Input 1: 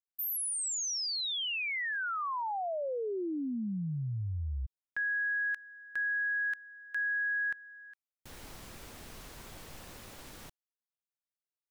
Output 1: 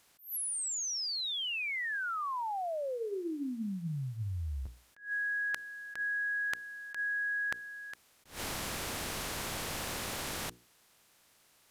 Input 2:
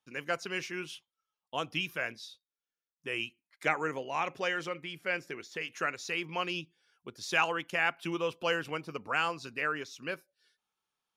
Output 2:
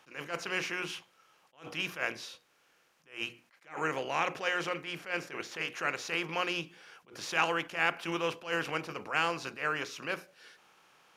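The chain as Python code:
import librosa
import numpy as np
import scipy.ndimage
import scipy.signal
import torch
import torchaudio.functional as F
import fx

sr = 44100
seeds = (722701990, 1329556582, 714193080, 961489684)

y = fx.bin_compress(x, sr, power=0.6)
y = fx.hum_notches(y, sr, base_hz=60, count=8)
y = fx.attack_slew(y, sr, db_per_s=180.0)
y = y * 10.0 ** (-2.0 / 20.0)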